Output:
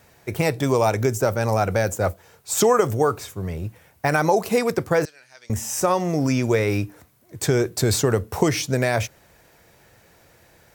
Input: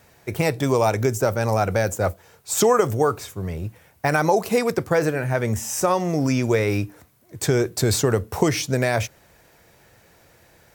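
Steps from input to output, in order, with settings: 5.05–5.5 band-pass 4800 Hz, Q 3.7

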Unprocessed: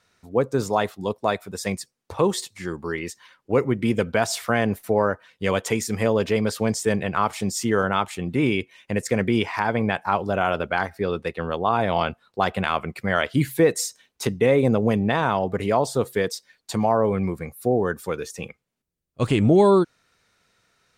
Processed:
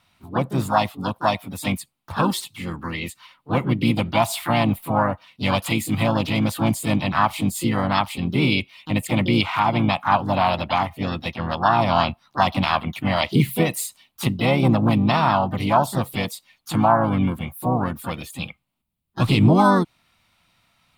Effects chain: fixed phaser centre 1600 Hz, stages 6; dynamic EQ 1400 Hz, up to -7 dB, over -45 dBFS, Q 3.6; harmoniser +4 st -8 dB, +7 st -8 dB; gain +5.5 dB

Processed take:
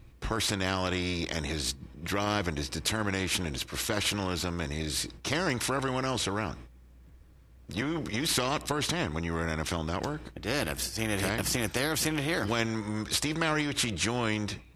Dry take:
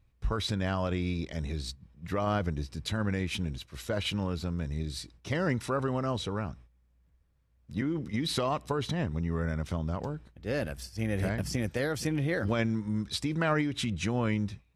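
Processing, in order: bell 320 Hz +8 dB 0.46 oct; spectral compressor 2:1; gain +1.5 dB

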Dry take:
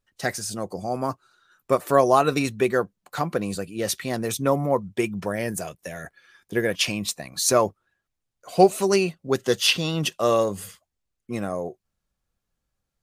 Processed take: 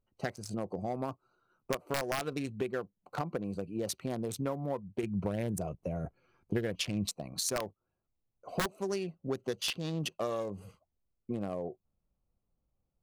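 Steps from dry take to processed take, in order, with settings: Wiener smoothing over 25 samples; wrapped overs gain 8 dB; compressor 6:1, threshold -32 dBFS, peak gain reduction 18.5 dB; 5.03–7.06 low shelf 160 Hz +10 dB

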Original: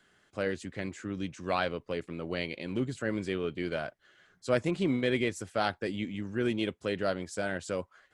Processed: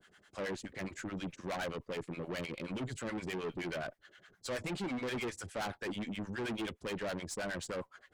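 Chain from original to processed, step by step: harmonic tremolo 9.5 Hz, depth 100%, crossover 670 Hz; tube stage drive 41 dB, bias 0.25; gain +6.5 dB

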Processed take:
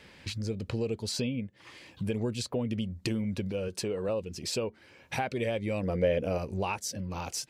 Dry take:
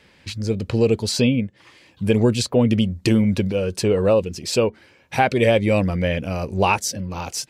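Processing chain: compressor 2.5:1, threshold -36 dBFS, peak gain reduction 15.5 dB; 3.68–4.09 HPF 160 Hz 6 dB/oct; 5.83–6.38 bell 480 Hz +12.5 dB 1 oct

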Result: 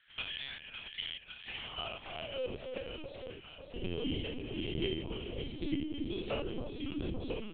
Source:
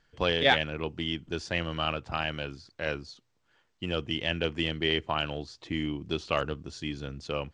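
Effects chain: stepped spectrum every 0.1 s; band shelf 1200 Hz -10 dB; de-hum 73.26 Hz, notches 4; compressor 6:1, threshold -44 dBFS, peak gain reduction 19 dB; high-pass sweep 1600 Hz -> 210 Hz, 1.17–3.26; tremolo triangle 1.3 Hz, depth 75%; echo with dull and thin repeats by turns 0.278 s, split 1100 Hz, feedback 81%, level -6 dB; LPC vocoder at 8 kHz pitch kept; gain +10 dB

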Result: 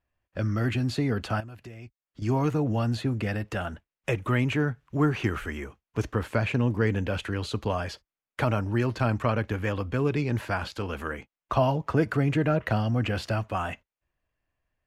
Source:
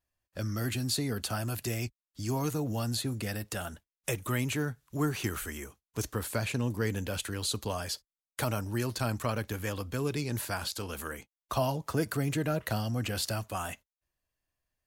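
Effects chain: band shelf 5900 Hz -8.5 dB; 1.4–2.22 compressor 8:1, threshold -47 dBFS, peak gain reduction 17 dB; air absorption 100 m; gain +6.5 dB

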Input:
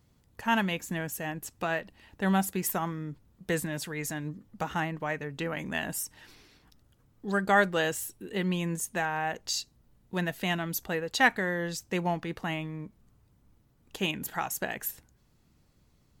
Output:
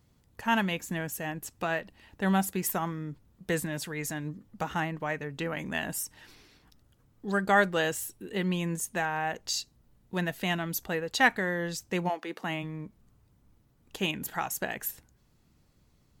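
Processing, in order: 12.08–12.62 HPF 430 Hz -> 120 Hz 24 dB/oct

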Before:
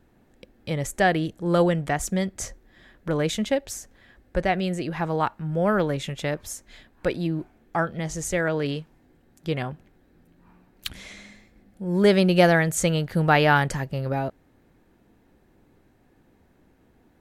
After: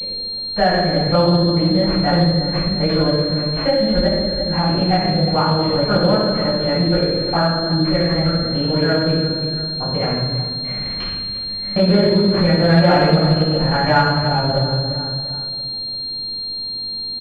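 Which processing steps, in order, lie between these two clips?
slices in reverse order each 0.14 s, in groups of 4; on a send: feedback echo 0.343 s, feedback 44%, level -16 dB; on the sum: shoebox room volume 680 m³, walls mixed, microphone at 7.7 m; compressor 2:1, threshold -17 dBFS, peak gain reduction 11.5 dB; pulse-width modulation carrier 4200 Hz; gain -1 dB

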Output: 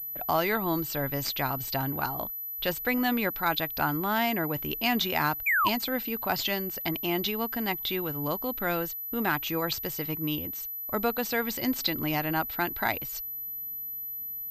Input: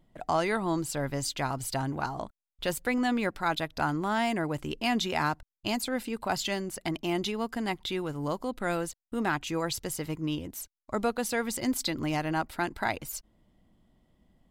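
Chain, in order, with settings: high shelf 2200 Hz +6 dB; painted sound fall, 5.46–5.69, 910–2500 Hz -24 dBFS; pulse-width modulation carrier 12000 Hz

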